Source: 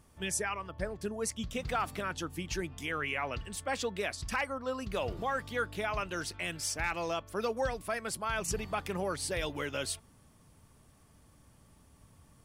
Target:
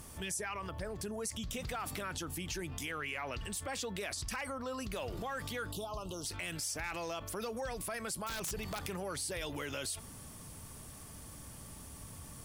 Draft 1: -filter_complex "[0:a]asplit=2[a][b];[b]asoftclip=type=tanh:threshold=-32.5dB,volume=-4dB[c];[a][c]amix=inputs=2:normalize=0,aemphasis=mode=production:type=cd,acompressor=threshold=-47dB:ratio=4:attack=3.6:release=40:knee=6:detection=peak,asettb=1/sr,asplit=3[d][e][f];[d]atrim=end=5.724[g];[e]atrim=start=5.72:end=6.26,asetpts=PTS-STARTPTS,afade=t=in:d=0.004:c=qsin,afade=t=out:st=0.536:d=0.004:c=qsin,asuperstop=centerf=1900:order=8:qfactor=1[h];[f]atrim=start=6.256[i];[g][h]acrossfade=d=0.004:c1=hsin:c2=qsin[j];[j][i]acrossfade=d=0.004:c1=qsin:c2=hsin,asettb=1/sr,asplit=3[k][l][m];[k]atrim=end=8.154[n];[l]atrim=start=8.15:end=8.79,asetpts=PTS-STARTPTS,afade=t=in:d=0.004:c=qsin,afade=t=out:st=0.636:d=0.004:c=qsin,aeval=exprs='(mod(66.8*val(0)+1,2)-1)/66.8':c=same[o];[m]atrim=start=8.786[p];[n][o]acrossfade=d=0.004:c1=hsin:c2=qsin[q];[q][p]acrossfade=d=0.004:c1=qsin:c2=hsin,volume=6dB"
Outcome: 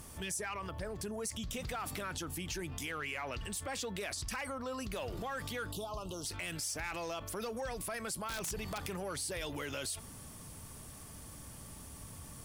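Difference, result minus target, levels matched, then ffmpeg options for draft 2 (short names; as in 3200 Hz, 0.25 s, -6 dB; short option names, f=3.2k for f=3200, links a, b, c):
soft clip: distortion +10 dB
-filter_complex "[0:a]asplit=2[a][b];[b]asoftclip=type=tanh:threshold=-24dB,volume=-4dB[c];[a][c]amix=inputs=2:normalize=0,aemphasis=mode=production:type=cd,acompressor=threshold=-47dB:ratio=4:attack=3.6:release=40:knee=6:detection=peak,asettb=1/sr,asplit=3[d][e][f];[d]atrim=end=5.724[g];[e]atrim=start=5.72:end=6.26,asetpts=PTS-STARTPTS,afade=t=in:d=0.004:c=qsin,afade=t=out:st=0.536:d=0.004:c=qsin,asuperstop=centerf=1900:order=8:qfactor=1[h];[f]atrim=start=6.256[i];[g][h]acrossfade=d=0.004:c1=hsin:c2=qsin[j];[j][i]acrossfade=d=0.004:c1=qsin:c2=hsin,asettb=1/sr,asplit=3[k][l][m];[k]atrim=end=8.154[n];[l]atrim=start=8.15:end=8.79,asetpts=PTS-STARTPTS,afade=t=in:d=0.004:c=qsin,afade=t=out:st=0.636:d=0.004:c=qsin,aeval=exprs='(mod(66.8*val(0)+1,2)-1)/66.8':c=same[o];[m]atrim=start=8.786[p];[n][o]acrossfade=d=0.004:c1=hsin:c2=qsin[q];[q][p]acrossfade=d=0.004:c1=qsin:c2=hsin,volume=6dB"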